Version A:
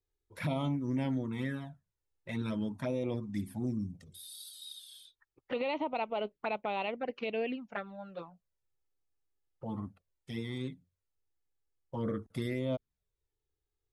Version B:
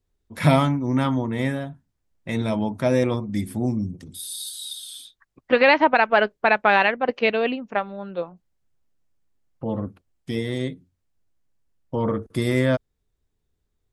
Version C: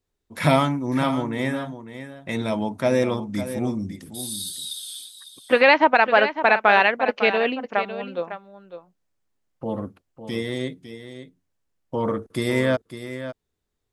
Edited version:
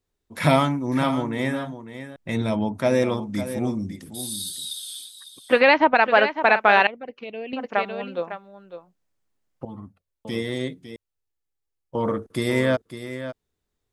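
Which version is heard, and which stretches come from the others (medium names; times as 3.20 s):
C
2.16–2.79 s: from B
5.60–6.01 s: from B, crossfade 0.10 s
6.87–7.53 s: from A
9.65–10.25 s: from A
10.96–11.95 s: from A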